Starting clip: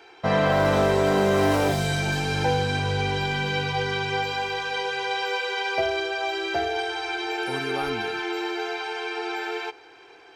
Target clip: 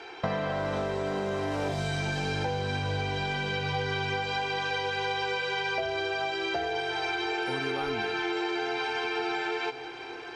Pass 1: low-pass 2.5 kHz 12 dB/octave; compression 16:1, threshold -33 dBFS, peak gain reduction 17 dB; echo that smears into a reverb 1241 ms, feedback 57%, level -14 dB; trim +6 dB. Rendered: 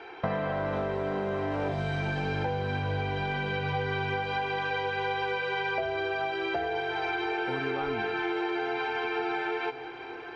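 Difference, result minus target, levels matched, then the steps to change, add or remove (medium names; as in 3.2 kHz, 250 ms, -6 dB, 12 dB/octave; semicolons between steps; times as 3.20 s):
8 kHz band -14.5 dB
change: low-pass 7 kHz 12 dB/octave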